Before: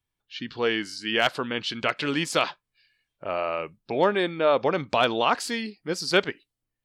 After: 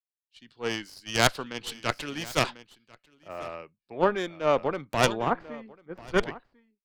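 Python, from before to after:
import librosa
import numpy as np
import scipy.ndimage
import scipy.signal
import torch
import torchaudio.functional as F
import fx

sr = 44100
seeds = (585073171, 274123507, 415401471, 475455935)

p1 = fx.tracing_dist(x, sr, depth_ms=0.16)
p2 = fx.lowpass(p1, sr, hz=fx.line((5.13, 1300.0), (6.17, 2100.0)), slope=12, at=(5.13, 6.17), fade=0.02)
p3 = fx.cheby_harmonics(p2, sr, harmonics=(2, 5), levels_db=(-7, -28), full_scale_db=-8.5)
p4 = p3 + fx.echo_single(p3, sr, ms=1045, db=-13.0, dry=0)
p5 = fx.band_widen(p4, sr, depth_pct=100)
y = p5 * librosa.db_to_amplitude(-7.5)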